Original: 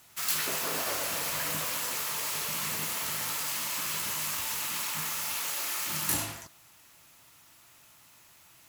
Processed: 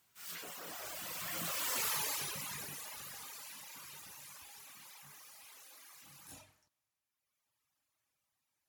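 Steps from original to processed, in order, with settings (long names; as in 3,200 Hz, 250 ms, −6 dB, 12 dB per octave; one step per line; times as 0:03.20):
source passing by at 0:01.87, 30 m/s, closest 9.5 metres
reverb reduction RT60 1.6 s
transient designer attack −9 dB, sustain +3 dB
level +1 dB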